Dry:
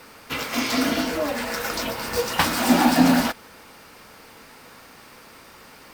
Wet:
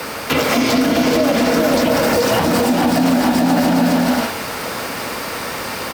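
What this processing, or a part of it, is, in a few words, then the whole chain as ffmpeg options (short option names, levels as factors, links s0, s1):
mastering chain: -filter_complex "[0:a]highpass=52,equalizer=f=590:t=o:w=0.63:g=4,aecho=1:1:430|688|842.8|935.7|991.4:0.631|0.398|0.251|0.158|0.1,acrossover=split=94|210|690[s0][s1][s2][s3];[s0]acompressor=threshold=0.002:ratio=4[s4];[s1]acompressor=threshold=0.0316:ratio=4[s5];[s2]acompressor=threshold=0.0398:ratio=4[s6];[s3]acompressor=threshold=0.0178:ratio=4[s7];[s4][s5][s6][s7]amix=inputs=4:normalize=0,acompressor=threshold=0.0398:ratio=2.5,alimiter=level_in=16.8:limit=0.891:release=50:level=0:latency=1,volume=0.531"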